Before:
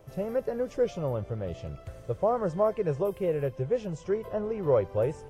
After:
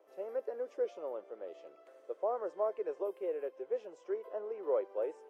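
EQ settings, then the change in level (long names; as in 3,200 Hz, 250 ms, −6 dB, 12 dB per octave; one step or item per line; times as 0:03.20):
Butterworth high-pass 330 Hz 36 dB per octave
high-shelf EQ 2,700 Hz −11 dB
−7.5 dB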